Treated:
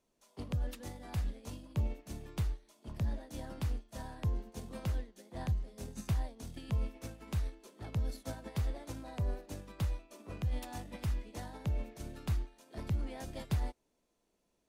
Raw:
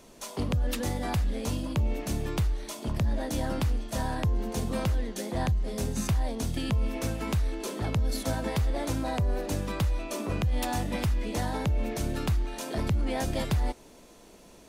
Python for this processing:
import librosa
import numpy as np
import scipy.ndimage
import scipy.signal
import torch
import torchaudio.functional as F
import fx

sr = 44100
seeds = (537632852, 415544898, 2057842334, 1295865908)

y = fx.upward_expand(x, sr, threshold_db=-37.0, expansion=2.5)
y = y * librosa.db_to_amplitude(-4.5)